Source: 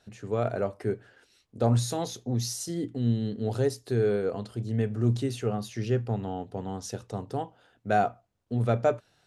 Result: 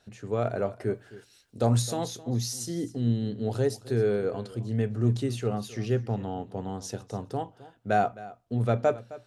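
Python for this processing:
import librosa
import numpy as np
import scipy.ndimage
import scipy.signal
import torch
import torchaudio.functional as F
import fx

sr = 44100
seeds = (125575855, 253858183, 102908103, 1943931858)

y = fx.high_shelf(x, sr, hz=4800.0, db=9.5, at=(0.94, 1.82))
y = y + 10.0 ** (-18.0 / 20.0) * np.pad(y, (int(263 * sr / 1000.0), 0))[:len(y)]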